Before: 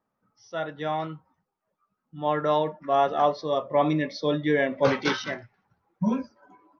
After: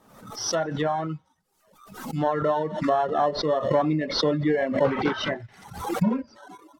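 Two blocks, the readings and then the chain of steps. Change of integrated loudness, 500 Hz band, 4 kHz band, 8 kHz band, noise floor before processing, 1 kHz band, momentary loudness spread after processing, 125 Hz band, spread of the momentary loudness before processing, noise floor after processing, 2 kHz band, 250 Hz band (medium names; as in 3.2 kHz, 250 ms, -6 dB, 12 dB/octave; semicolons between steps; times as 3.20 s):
+0.5 dB, +1.0 dB, +4.0 dB, no reading, -81 dBFS, 0.0 dB, 13 LU, +3.5 dB, 11 LU, -67 dBFS, -1.5 dB, +2.0 dB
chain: in parallel at -9 dB: sample-rate reducer 2.4 kHz, jitter 0%; on the sum: treble shelf 3.9 kHz +7 dB; compression 2.5:1, threshold -31 dBFS, peak gain reduction 12 dB; low-pass that closes with the level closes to 1.7 kHz, closed at -30 dBFS; feedback echo behind a high-pass 87 ms, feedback 51%, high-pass 3.3 kHz, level -12 dB; reverb removal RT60 0.69 s; swell ahead of each attack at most 70 dB/s; trim +8 dB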